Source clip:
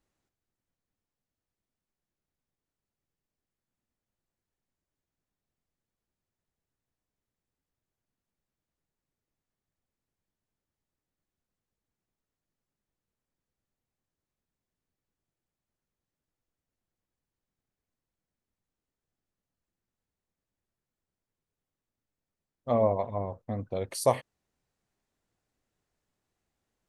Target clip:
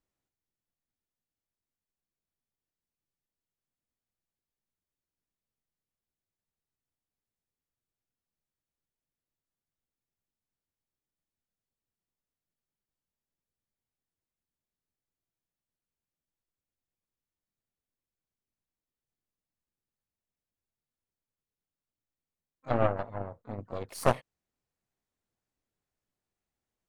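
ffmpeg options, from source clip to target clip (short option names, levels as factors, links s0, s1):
-filter_complex "[0:a]asplit=3[s0][s1][s2];[s1]asetrate=52444,aresample=44100,atempo=0.840896,volume=0.398[s3];[s2]asetrate=88200,aresample=44100,atempo=0.5,volume=0.141[s4];[s0][s3][s4]amix=inputs=3:normalize=0,aeval=exprs='0.335*(cos(1*acos(clip(val(0)/0.335,-1,1)))-cos(1*PI/2))+0.0668*(cos(3*acos(clip(val(0)/0.335,-1,1)))-cos(3*PI/2))+0.0596*(cos(4*acos(clip(val(0)/0.335,-1,1)))-cos(4*PI/2))':c=same"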